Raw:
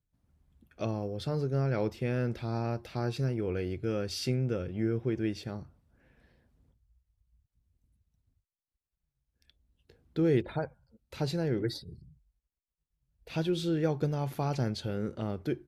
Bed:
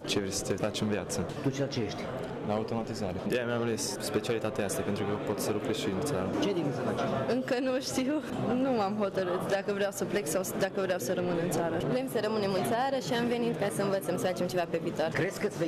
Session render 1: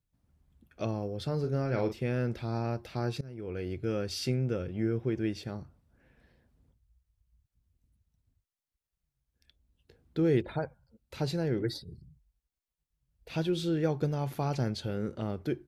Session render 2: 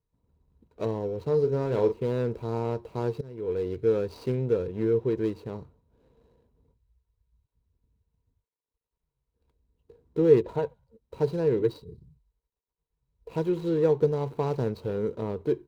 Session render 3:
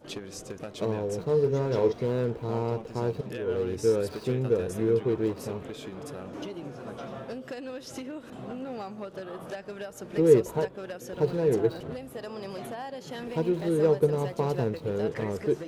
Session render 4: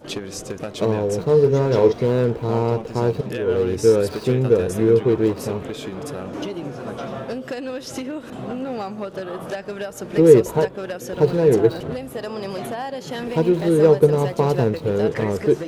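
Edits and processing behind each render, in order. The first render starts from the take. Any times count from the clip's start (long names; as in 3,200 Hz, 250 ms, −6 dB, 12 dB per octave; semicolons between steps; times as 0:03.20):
0:01.40–0:01.93: double-tracking delay 40 ms −7 dB; 0:03.21–0:03.78: fade in, from −22 dB
running median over 25 samples; hollow resonant body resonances 450/960/3,900 Hz, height 14 dB, ringing for 45 ms
mix in bed −8.5 dB
level +9 dB; brickwall limiter −1 dBFS, peak gain reduction 2.5 dB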